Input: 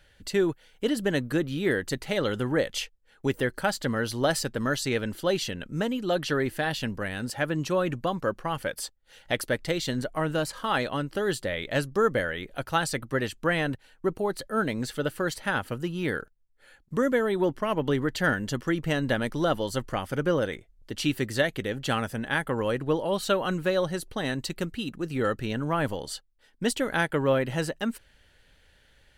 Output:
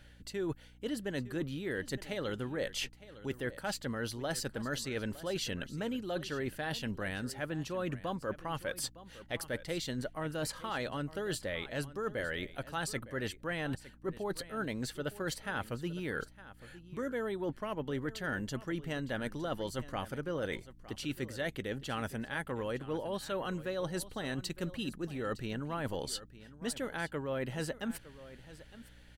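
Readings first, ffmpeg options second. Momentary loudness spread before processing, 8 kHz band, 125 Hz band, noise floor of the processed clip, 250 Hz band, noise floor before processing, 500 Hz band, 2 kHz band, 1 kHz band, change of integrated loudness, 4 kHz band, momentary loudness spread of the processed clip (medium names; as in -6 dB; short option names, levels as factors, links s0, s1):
6 LU, -6.5 dB, -8.5 dB, -56 dBFS, -9.0 dB, -62 dBFS, -10.5 dB, -9.5 dB, -10.5 dB, -9.5 dB, -8.0 dB, 4 LU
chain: -af "areverse,acompressor=threshold=0.02:ratio=6,areverse,aeval=exprs='val(0)+0.00126*(sin(2*PI*60*n/s)+sin(2*PI*2*60*n/s)/2+sin(2*PI*3*60*n/s)/3+sin(2*PI*4*60*n/s)/4+sin(2*PI*5*60*n/s)/5)':c=same,aecho=1:1:910:0.15"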